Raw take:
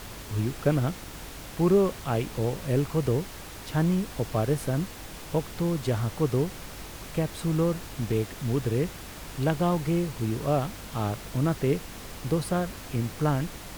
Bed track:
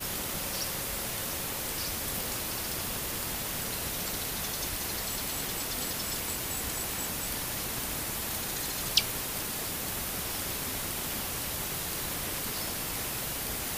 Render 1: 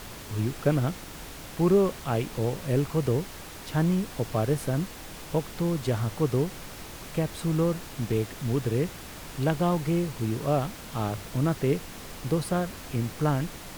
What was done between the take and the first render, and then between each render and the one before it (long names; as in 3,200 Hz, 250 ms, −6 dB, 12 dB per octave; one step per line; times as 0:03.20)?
hum removal 50 Hz, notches 2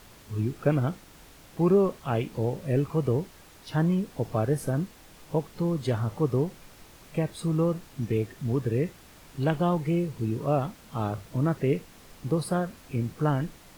noise reduction from a noise print 10 dB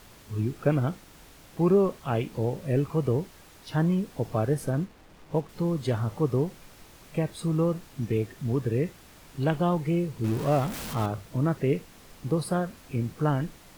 0:04.54–0:05.49: slack as between gear wheels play −47 dBFS
0:10.24–0:11.06: converter with a step at zero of −31.5 dBFS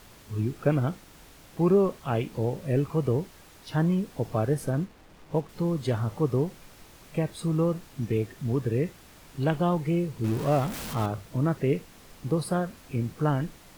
no processing that can be heard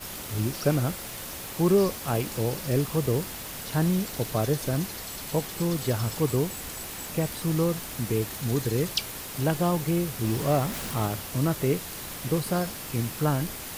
mix in bed track −3.5 dB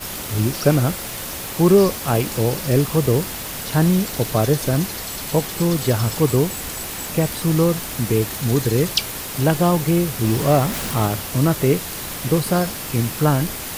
level +8 dB